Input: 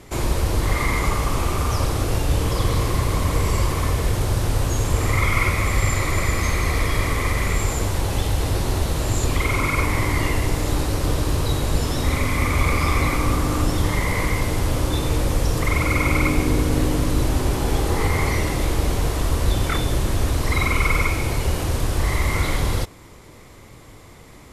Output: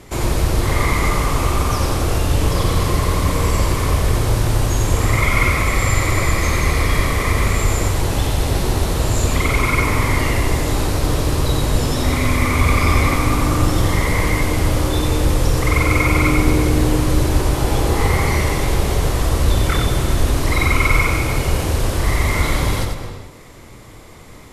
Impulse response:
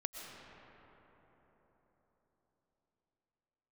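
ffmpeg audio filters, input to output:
-filter_complex "[0:a]asplit=2[link_01][link_02];[1:a]atrim=start_sample=2205,afade=type=out:start_time=0.4:duration=0.01,atrim=end_sample=18081,adelay=92[link_03];[link_02][link_03]afir=irnorm=-1:irlink=0,volume=-2.5dB[link_04];[link_01][link_04]amix=inputs=2:normalize=0,volume=2.5dB"

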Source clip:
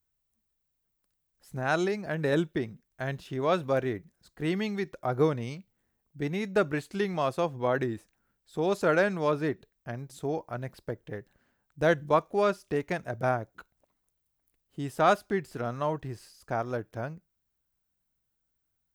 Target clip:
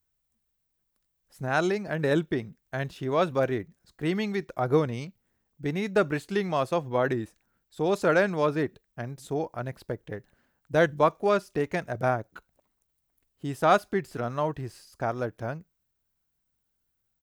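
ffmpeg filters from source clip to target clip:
ffmpeg -i in.wav -af "atempo=1.1,volume=2dB" out.wav

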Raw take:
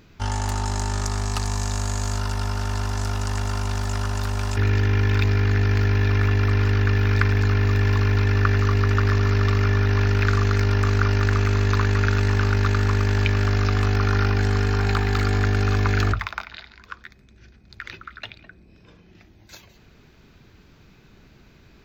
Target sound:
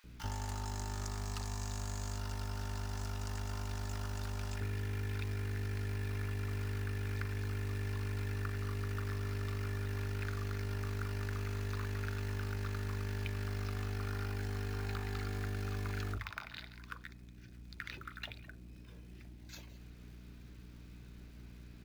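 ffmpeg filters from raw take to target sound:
ffmpeg -i in.wav -filter_complex "[0:a]aeval=exprs='val(0)+0.00631*(sin(2*PI*60*n/s)+sin(2*PI*2*60*n/s)/2+sin(2*PI*3*60*n/s)/3+sin(2*PI*4*60*n/s)/4+sin(2*PI*5*60*n/s)/5)':channel_layout=same,acrusher=bits=5:mode=log:mix=0:aa=0.000001,acompressor=threshold=-28dB:ratio=6,acrossover=split=930[link_01][link_02];[link_01]adelay=40[link_03];[link_03][link_02]amix=inputs=2:normalize=0,volume=-7.5dB" out.wav

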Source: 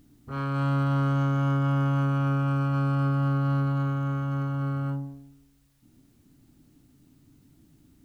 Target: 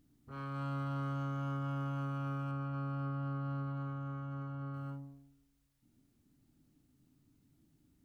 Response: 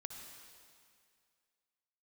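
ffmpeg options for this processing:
-filter_complex "[0:a]asettb=1/sr,asplit=3[link_01][link_02][link_03];[link_01]atrim=end=2.514[link_04];[link_02]atrim=start=2.51:end=4.74,asetpts=PTS-STARTPTS,afade=type=in:duration=0.004:curve=qsin,afade=type=out:start_time=2.226:duration=0.004:curve=qsin,lowpass=frequency=2600:poles=1[link_05];[link_03]atrim=start=4.736[link_06];[link_04][link_05]acrossfade=duration=0.004:curve1=hsin:curve2=qsin[link_07];[link_07][link_06]acrossfade=duration=0.004:curve1=qsin:curve2=hsin[link_08];[1:a]atrim=start_sample=2205,atrim=end_sample=3528,asetrate=66150,aresample=44100[link_09];[link_08][link_09]afir=irnorm=-1:irlink=0,volume=-3.5dB"

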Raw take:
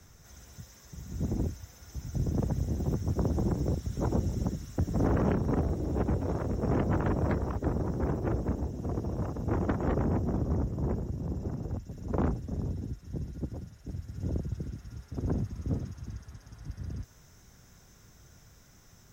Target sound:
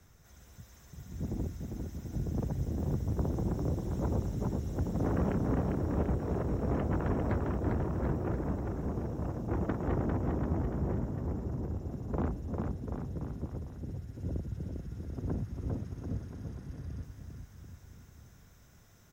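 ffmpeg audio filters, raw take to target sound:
ffmpeg -i in.wav -filter_complex "[0:a]equalizer=frequency=5800:width=1.8:gain=-5,asplit=2[link_01][link_02];[link_02]aecho=0:1:400|740|1029|1275|1483:0.631|0.398|0.251|0.158|0.1[link_03];[link_01][link_03]amix=inputs=2:normalize=0,volume=-4.5dB" out.wav

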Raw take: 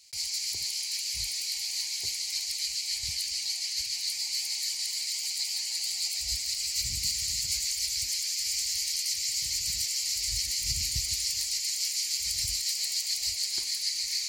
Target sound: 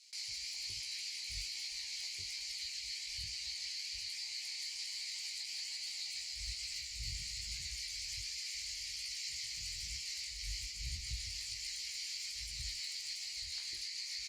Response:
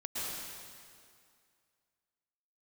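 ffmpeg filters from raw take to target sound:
-filter_complex "[0:a]aemphasis=mode=reproduction:type=bsi,acrossover=split=3100[link_01][link_02];[link_02]acompressor=threshold=-43dB:ratio=4:attack=1:release=60[link_03];[link_01][link_03]amix=inputs=2:normalize=0,tiltshelf=frequency=1200:gain=-9,alimiter=level_in=2.5dB:limit=-24dB:level=0:latency=1:release=101,volume=-2.5dB,flanger=delay=15:depth=7.3:speed=1.2,acrossover=split=590[link_04][link_05];[link_04]adelay=150[link_06];[link_06][link_05]amix=inputs=2:normalize=0,volume=-3dB" -ar 48000 -c:a libopus -b:a 64k

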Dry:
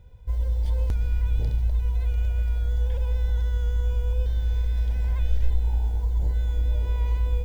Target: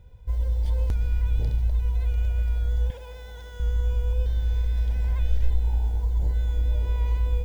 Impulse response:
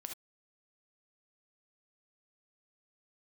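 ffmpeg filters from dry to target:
-filter_complex "[0:a]asettb=1/sr,asplit=3[link_01][link_02][link_03];[link_01]atrim=end=2.904[link_04];[link_02]atrim=start=2.9:end=3.6,asetpts=PTS-STARTPTS,afade=type=in:duration=0.004:curve=qsin,afade=type=out:start_time=0.696:duration=0.004:curve=qsin,highpass=frequency=430:poles=1[link_05];[link_03]atrim=start=3.596[link_06];[link_04][link_05]acrossfade=duration=0.004:curve1=hsin:curve2=qsin[link_07];[link_07][link_06]acrossfade=duration=0.004:curve1=qsin:curve2=hsin"

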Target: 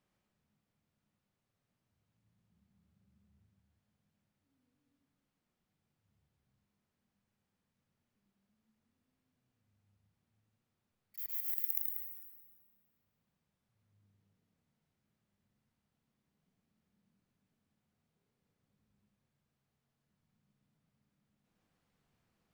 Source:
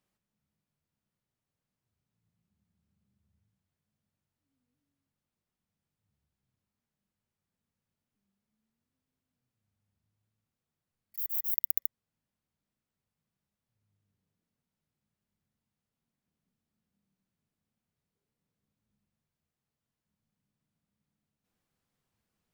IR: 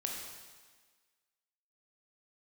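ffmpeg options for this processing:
-filter_complex "[0:a]highshelf=frequency=5500:gain=-10,asplit=2[link_01][link_02];[1:a]atrim=start_sample=2205,adelay=109[link_03];[link_02][link_03]afir=irnorm=-1:irlink=0,volume=-2dB[link_04];[link_01][link_04]amix=inputs=2:normalize=0,volume=2.5dB"

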